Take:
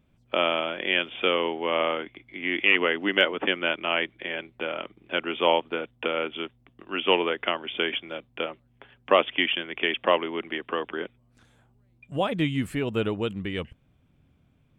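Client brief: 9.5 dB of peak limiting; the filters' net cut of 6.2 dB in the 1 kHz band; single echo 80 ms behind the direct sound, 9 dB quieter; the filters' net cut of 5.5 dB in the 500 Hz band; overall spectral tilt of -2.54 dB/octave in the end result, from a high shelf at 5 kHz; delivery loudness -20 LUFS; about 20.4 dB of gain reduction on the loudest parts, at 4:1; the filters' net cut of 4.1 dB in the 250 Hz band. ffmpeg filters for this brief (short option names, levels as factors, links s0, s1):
-af "equalizer=f=250:t=o:g=-3.5,equalizer=f=500:t=o:g=-4,equalizer=f=1000:t=o:g=-6.5,highshelf=f=5000:g=-4,acompressor=threshold=0.00631:ratio=4,alimiter=level_in=3.16:limit=0.0631:level=0:latency=1,volume=0.316,aecho=1:1:80:0.355,volume=22.4"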